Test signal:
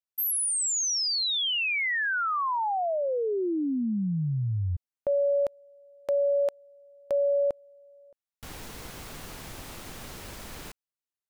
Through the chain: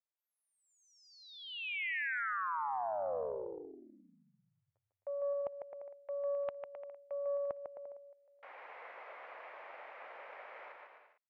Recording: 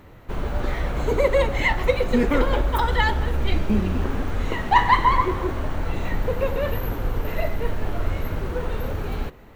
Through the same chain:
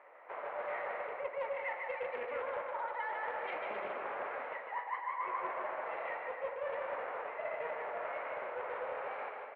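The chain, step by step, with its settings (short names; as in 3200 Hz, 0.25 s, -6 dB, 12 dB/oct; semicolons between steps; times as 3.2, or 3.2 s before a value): Chebyshev band-pass 550–2200 Hz, order 3; bell 1500 Hz -2.5 dB; reverse; compressor 12:1, threshold -34 dBFS; reverse; bouncing-ball echo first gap 0.15 s, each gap 0.75×, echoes 5; Doppler distortion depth 0.13 ms; gain -3 dB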